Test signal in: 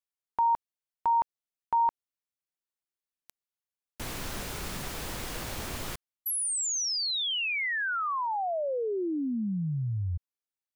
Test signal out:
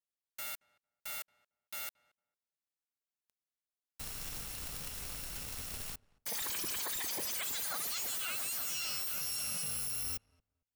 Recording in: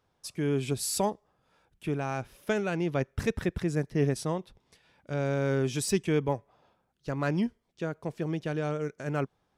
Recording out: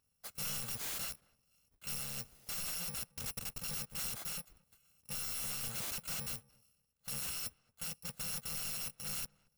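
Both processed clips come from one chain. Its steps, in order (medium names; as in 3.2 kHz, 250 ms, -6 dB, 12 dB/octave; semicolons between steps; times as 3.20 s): bit-reversed sample order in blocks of 128 samples; integer overflow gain 28.5 dB; filtered feedback delay 226 ms, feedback 18%, low-pass 1.3 kHz, level -23 dB; trim -6 dB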